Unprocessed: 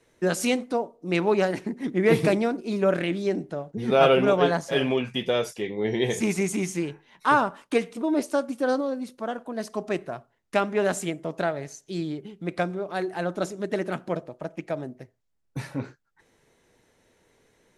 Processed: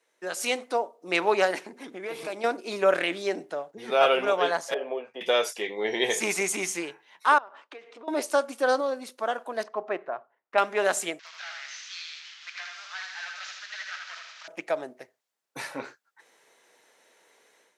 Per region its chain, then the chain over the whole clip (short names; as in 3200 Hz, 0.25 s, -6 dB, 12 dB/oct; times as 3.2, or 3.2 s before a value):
1.63–2.44 notch 1900 Hz, Q 7.1 + compressor 8:1, threshold -30 dBFS
4.74–5.21 band-pass 530 Hz, Q 2.2 + three-band squash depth 40%
7.38–8.08 HPF 250 Hz 24 dB/oct + compressor 8:1, threshold -37 dBFS + air absorption 180 m
9.63–10.58 LPF 1500 Hz + low shelf 400 Hz -4.5 dB
11.19–14.48 delta modulation 32 kbps, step -41.5 dBFS + HPF 1500 Hz 24 dB/oct + feedback echo 79 ms, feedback 49%, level -4 dB
whole clip: HPF 590 Hz 12 dB/oct; AGC gain up to 11.5 dB; gain -6 dB